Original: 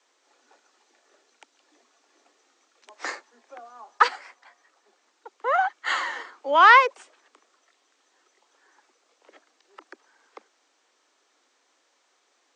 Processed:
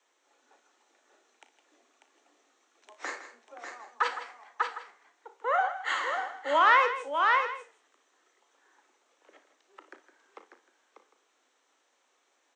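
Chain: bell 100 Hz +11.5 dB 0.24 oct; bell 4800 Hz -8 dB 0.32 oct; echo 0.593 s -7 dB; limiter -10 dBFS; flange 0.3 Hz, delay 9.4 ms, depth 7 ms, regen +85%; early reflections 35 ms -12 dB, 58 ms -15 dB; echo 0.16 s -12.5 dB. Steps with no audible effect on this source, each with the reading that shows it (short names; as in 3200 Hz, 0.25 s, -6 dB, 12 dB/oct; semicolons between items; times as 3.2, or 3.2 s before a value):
bell 100 Hz: input band starts at 270 Hz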